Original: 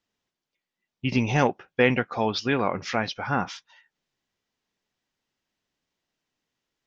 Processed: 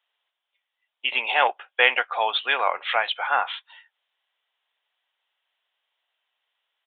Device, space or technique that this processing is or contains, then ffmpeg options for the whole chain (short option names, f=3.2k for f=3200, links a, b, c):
musical greeting card: -af "aresample=8000,aresample=44100,highpass=f=650:w=0.5412,highpass=f=650:w=1.3066,equalizer=f=3.2k:t=o:w=0.47:g=6,volume=5.5dB"